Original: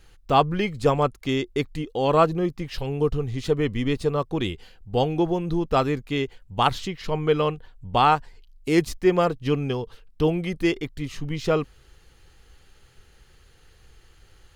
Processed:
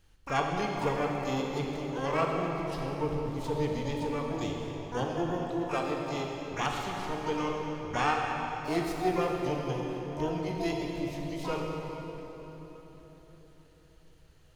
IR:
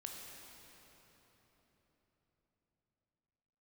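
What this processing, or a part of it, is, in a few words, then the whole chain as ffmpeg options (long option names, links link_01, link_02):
shimmer-style reverb: -filter_complex "[0:a]asplit=3[link_01][link_02][link_03];[link_01]afade=type=out:start_time=5.44:duration=0.02[link_04];[link_02]highpass=270,afade=type=in:start_time=5.44:duration=0.02,afade=type=out:start_time=6.08:duration=0.02[link_05];[link_03]afade=type=in:start_time=6.08:duration=0.02[link_06];[link_04][link_05][link_06]amix=inputs=3:normalize=0,asplit=2[link_07][link_08];[link_08]asetrate=88200,aresample=44100,atempo=0.5,volume=-6dB[link_09];[link_07][link_09]amix=inputs=2:normalize=0[link_10];[1:a]atrim=start_sample=2205[link_11];[link_10][link_11]afir=irnorm=-1:irlink=0,volume=-6.5dB"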